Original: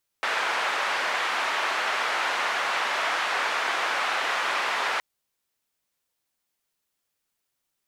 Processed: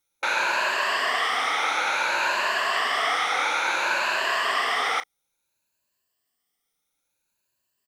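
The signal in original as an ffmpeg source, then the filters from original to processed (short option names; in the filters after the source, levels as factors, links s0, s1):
-f lavfi -i "anoisesrc=c=white:d=4.77:r=44100:seed=1,highpass=f=810,lowpass=f=1700,volume=-8.4dB"
-filter_complex "[0:a]afftfilt=real='re*pow(10,12/40*sin(2*PI*(1.4*log(max(b,1)*sr/1024/100)/log(2)-(0.58)*(pts-256)/sr)))':imag='im*pow(10,12/40*sin(2*PI*(1.4*log(max(b,1)*sr/1024/100)/log(2)-(0.58)*(pts-256)/sr)))':win_size=1024:overlap=0.75,asplit=2[s0][s1];[s1]adelay=35,volume=0.2[s2];[s0][s2]amix=inputs=2:normalize=0"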